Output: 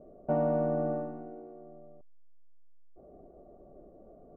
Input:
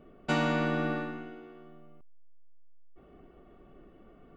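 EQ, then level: dynamic EQ 410 Hz, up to -5 dB, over -44 dBFS, Q 1.2; synth low-pass 620 Hz, resonance Q 4.6; air absorption 290 m; -2.0 dB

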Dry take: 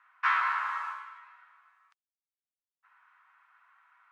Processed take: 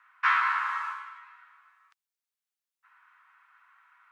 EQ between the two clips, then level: HPF 910 Hz 12 dB/oct; +3.5 dB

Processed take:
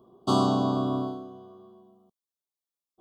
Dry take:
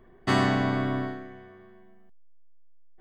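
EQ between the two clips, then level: HPF 150 Hz 12 dB/oct; elliptic band-stop 1200–3300 Hz, stop band 80 dB; +2.0 dB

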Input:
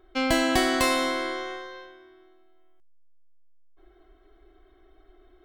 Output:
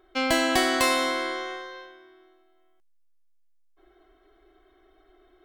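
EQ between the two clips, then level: low shelf 210 Hz -10 dB; +1.5 dB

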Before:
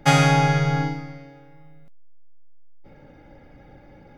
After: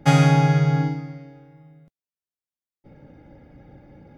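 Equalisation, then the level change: HPF 90 Hz 6 dB/oct; low shelf 390 Hz +11 dB; -5.0 dB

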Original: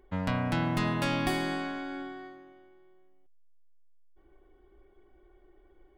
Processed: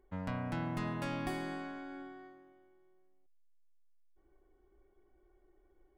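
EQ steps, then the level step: bell 3600 Hz -5.5 dB 1.3 oct; high shelf 10000 Hz -5 dB; -8.0 dB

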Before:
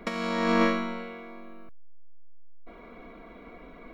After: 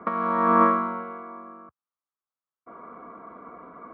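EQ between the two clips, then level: HPF 83 Hz 24 dB/oct; synth low-pass 1200 Hz, resonance Q 4.9; air absorption 79 m; 0.0 dB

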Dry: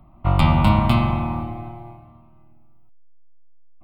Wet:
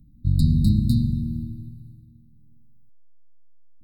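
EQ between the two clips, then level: brick-wall FIR band-stop 310–3700 Hz; high shelf 4400 Hz +3 dB; -1.5 dB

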